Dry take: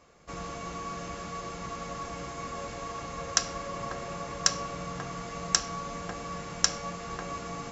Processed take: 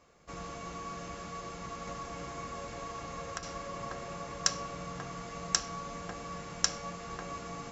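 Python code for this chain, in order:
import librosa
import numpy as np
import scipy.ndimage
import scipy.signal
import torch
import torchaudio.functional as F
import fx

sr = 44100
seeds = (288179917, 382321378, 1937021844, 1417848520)

y = fx.band_squash(x, sr, depth_pct=100, at=(1.87, 3.43))
y = y * 10.0 ** (-4.0 / 20.0)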